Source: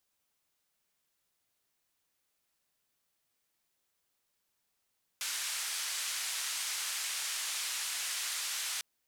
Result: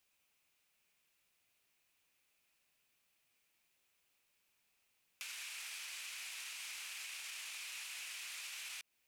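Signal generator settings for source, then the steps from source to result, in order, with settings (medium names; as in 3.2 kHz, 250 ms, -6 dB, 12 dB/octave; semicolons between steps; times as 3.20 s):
noise band 1.4–9.4 kHz, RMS -36.5 dBFS 3.60 s
peaking EQ 2.5 kHz +10.5 dB 0.5 oct; peak limiter -31.5 dBFS; compression 2.5:1, threshold -47 dBFS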